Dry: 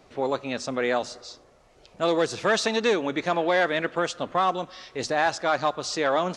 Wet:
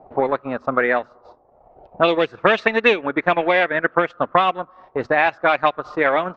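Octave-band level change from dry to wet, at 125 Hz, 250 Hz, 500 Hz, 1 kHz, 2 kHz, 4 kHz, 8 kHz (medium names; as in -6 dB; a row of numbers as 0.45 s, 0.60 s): +3.5 dB, +4.0 dB, +5.5 dB, +6.5 dB, +8.5 dB, +1.5 dB, under -20 dB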